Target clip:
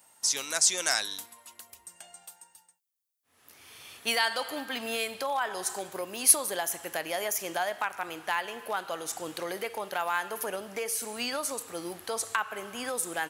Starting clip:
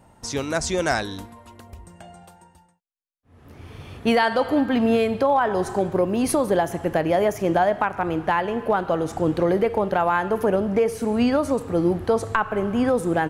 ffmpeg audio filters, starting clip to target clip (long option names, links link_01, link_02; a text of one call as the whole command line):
ffmpeg -i in.wav -af "aderivative,volume=8dB" out.wav